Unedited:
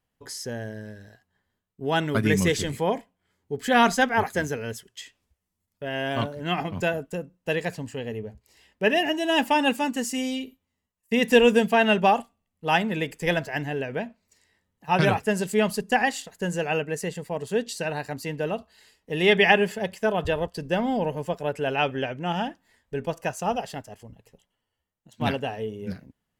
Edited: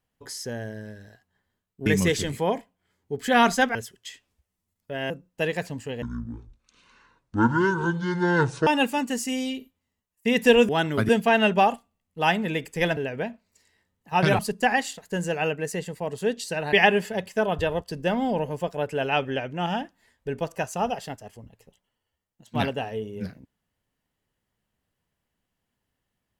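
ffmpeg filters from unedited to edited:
-filter_complex "[0:a]asplit=11[a][b][c][d][e][f][g][h][i][j][k];[a]atrim=end=1.862[l];[b]atrim=start=2.258:end=4.152[m];[c]atrim=start=4.668:end=6.022[n];[d]atrim=start=7.178:end=8.104[o];[e]atrim=start=8.1:end=9.53,asetpts=PTS-STARTPTS,asetrate=23814,aresample=44100,atrim=end_sample=116783,asetpts=PTS-STARTPTS[p];[f]atrim=start=9.526:end=11.552[q];[g]atrim=start=1.858:end=2.262[r];[h]atrim=start=11.548:end=13.432[s];[i]atrim=start=13.728:end=15.152[t];[j]atrim=start=15.678:end=18.022[u];[k]atrim=start=19.388[v];[l][m]acrossfade=d=0.004:c1=hsin:c2=hsin[w];[w][n]acrossfade=d=0.004:c1=hsin:c2=hsin[x];[x][o]acrossfade=d=0.004:c1=hsin:c2=hsin[y];[y][p]acrossfade=d=0.004:c1=hsin:c2=hsin[z];[z][q]acrossfade=d=0.004:c1=hsin:c2=hsin[aa];[aa][r]acrossfade=d=0.004:c1=hsin:c2=hsin[ab];[ab][s]acrossfade=d=0.004:c1=hsin:c2=hsin[ac];[ac][t]acrossfade=d=0.004:c1=hsin:c2=hsin[ad];[ad][u]acrossfade=d=0.004:c1=hsin:c2=hsin[ae];[ae][v]acrossfade=d=0.004:c1=hsin:c2=hsin"

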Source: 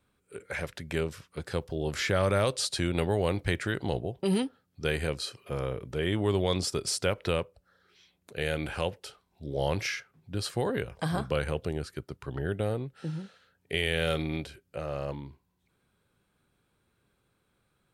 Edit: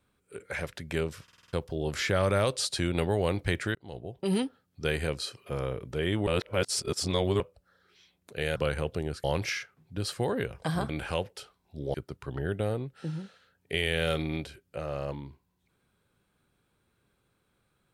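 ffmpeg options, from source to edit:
-filter_complex "[0:a]asplit=14[a][b][c][d][e][f][g][h][i][j][k][l][m][n];[a]atrim=end=1.282[o];[b]atrim=start=1.228:end=1.282[p];[c]atrim=start=1.228:end=1.282[q];[d]atrim=start=1.228:end=1.282[r];[e]atrim=start=1.228:end=1.282[s];[f]atrim=start=1.228:end=1.282[t];[g]atrim=start=1.528:end=3.75,asetpts=PTS-STARTPTS,afade=t=out:st=2.218:d=0.004:c=hsin[u];[h]atrim=start=3.75:end=6.272,asetpts=PTS-STARTPTS,afade=t=in:d=0.64[v];[i]atrim=start=6.268:end=7.402,asetpts=PTS-STARTPTS,areverse[w];[j]atrim=start=7.398:end=8.562[x];[k]atrim=start=11.258:end=11.942[y];[l]atrim=start=9.608:end=11.262[z];[m]atrim=start=8.558:end=9.612[aa];[n]atrim=start=11.938[ab];[o][p]acrossfade=d=0.004:c1=hsin:c2=hsin[ac];[ac][q]acrossfade=d=0.004:c1=hsin:c2=hsin[ad];[ad][r]acrossfade=d=0.004:c1=hsin:c2=hsin[ae];[ae][s]acrossfade=d=0.004:c1=hsin:c2=hsin[af];[af][t]acrossfade=d=0.004:c1=hsin:c2=hsin[ag];[u][v]concat=n=2:v=0:a=1[ah];[ag][ah]acrossfade=d=0.004:c1=hsin:c2=hsin[ai];[ai][w]acrossfade=d=0.004:c1=hsin:c2=hsin[aj];[aj][x]acrossfade=d=0.004:c1=hsin:c2=hsin[ak];[ak][y]acrossfade=d=0.004:c1=hsin:c2=hsin[al];[al][z]acrossfade=d=0.004:c1=hsin:c2=hsin[am];[am][aa]acrossfade=d=0.004:c1=hsin:c2=hsin[an];[an][ab]acrossfade=d=0.004:c1=hsin:c2=hsin"

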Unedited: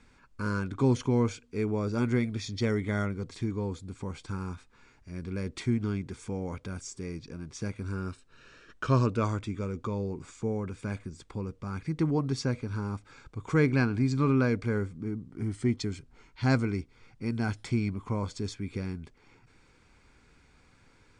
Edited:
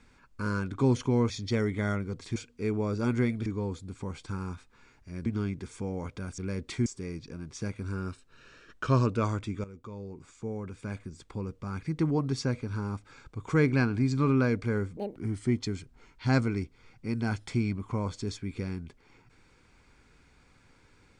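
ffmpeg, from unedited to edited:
-filter_complex "[0:a]asplit=10[a][b][c][d][e][f][g][h][i][j];[a]atrim=end=1.302[k];[b]atrim=start=2.398:end=3.462[l];[c]atrim=start=1.298:end=2.402[m];[d]atrim=start=3.458:end=5.262[n];[e]atrim=start=5.738:end=6.862[o];[f]atrim=start=5.258:end=5.742[p];[g]atrim=start=6.858:end=9.64,asetpts=PTS-STARTPTS,afade=t=out:st=2.778:d=0.004:c=hsin:silence=0.211349[q];[h]atrim=start=9.64:end=14.974,asetpts=PTS-STARTPTS,afade=t=in:d=1.82:silence=0.211349[r];[i]atrim=start=14.97:end=15.33,asetpts=PTS-STARTPTS,asetrate=83790,aresample=44100[s];[j]atrim=start=15.326[t];[k][l]acrossfade=d=0.004:c1=hsin:c2=hsin[u];[u][m]acrossfade=d=0.004:c1=hsin:c2=hsin[v];[v][n]acrossfade=d=0.004:c1=hsin:c2=hsin[w];[w][o]acrossfade=d=0.004:c1=hsin:c2=hsin[x];[x][p]acrossfade=d=0.004:c1=hsin:c2=hsin[y];[q][r]concat=n=2:v=0:a=1[z];[y][z]acrossfade=d=0.004:c1=hsin:c2=hsin[aa];[aa][s]acrossfade=d=0.004:c1=hsin:c2=hsin[ab];[ab][t]acrossfade=d=0.004:c1=hsin:c2=hsin"

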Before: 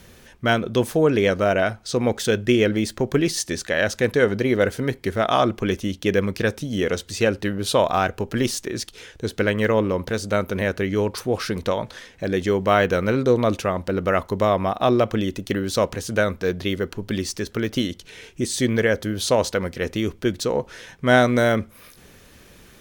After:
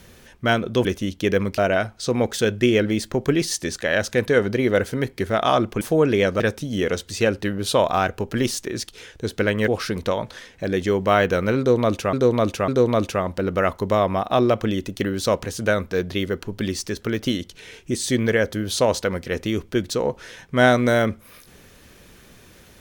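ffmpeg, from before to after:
-filter_complex "[0:a]asplit=8[a][b][c][d][e][f][g][h];[a]atrim=end=0.852[i];[b]atrim=start=5.668:end=6.402[j];[c]atrim=start=1.438:end=5.672[k];[d]atrim=start=0.848:end=1.442[l];[e]atrim=start=6.398:end=9.682[m];[f]atrim=start=11.278:end=13.732[n];[g]atrim=start=13.178:end=13.732[o];[h]atrim=start=13.178[p];[i][j]acrossfade=d=0.004:c1=hsin:c2=hsin[q];[q][k]acrossfade=d=0.004:c1=hsin:c2=hsin[r];[r][l]acrossfade=d=0.004:c1=hsin:c2=hsin[s];[s][m]acrossfade=d=0.004:c1=hsin:c2=hsin[t];[t][n]acrossfade=d=0.004:c1=hsin:c2=hsin[u];[u][o]acrossfade=d=0.004:c1=hsin:c2=hsin[v];[v][p]acrossfade=d=0.004:c1=hsin:c2=hsin"

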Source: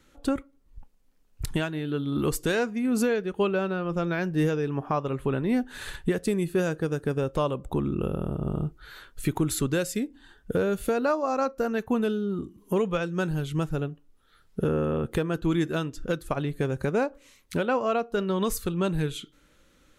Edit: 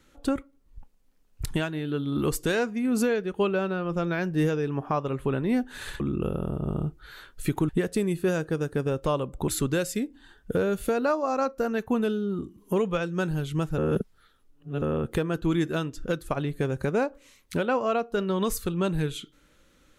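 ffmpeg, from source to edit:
-filter_complex "[0:a]asplit=6[a][b][c][d][e][f];[a]atrim=end=6.002[g];[b]atrim=start=7.788:end=9.482[h];[c]atrim=start=5.998:end=7.792[i];[d]atrim=start=9.478:end=13.782[j];[e]atrim=start=13.778:end=14.822,asetpts=PTS-STARTPTS,areverse[k];[f]atrim=start=14.818[l];[g][h]acrossfade=d=0.004:c1=hsin:c2=hsin[m];[m][i]acrossfade=d=0.004:c1=hsin:c2=hsin[n];[n][j]acrossfade=d=0.004:c1=hsin:c2=hsin[o];[o][k]acrossfade=d=0.004:c1=hsin:c2=hsin[p];[p][l]acrossfade=d=0.004:c1=hsin:c2=hsin"

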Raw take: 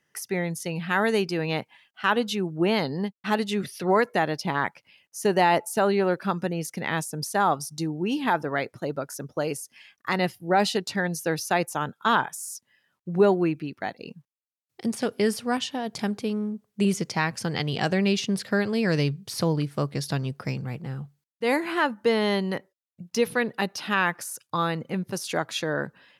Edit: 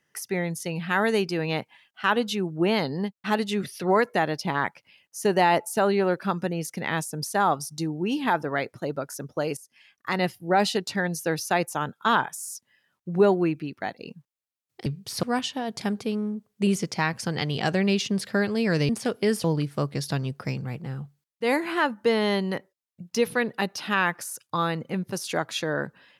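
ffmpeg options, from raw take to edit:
-filter_complex "[0:a]asplit=6[a][b][c][d][e][f];[a]atrim=end=9.57,asetpts=PTS-STARTPTS,afade=t=out:st=9.566:d=0.004:c=hsin:silence=0.251189[g];[b]atrim=start=9.57:end=14.862,asetpts=PTS-STARTPTS,afade=t=in:d=0.67:silence=0.251189[h];[c]atrim=start=19.068:end=19.442[i];[d]atrim=start=15.408:end=19.072[j];[e]atrim=start=14.858:end=15.412[k];[f]atrim=start=19.438[l];[g][h]concat=n=2:v=0:a=1[m];[m][i]acrossfade=d=0.004:c1=hsin:c2=hsin[n];[n][j]acrossfade=d=0.004:c1=hsin:c2=hsin[o];[o][k]acrossfade=d=0.004:c1=hsin:c2=hsin[p];[p][l]acrossfade=d=0.004:c1=hsin:c2=hsin"

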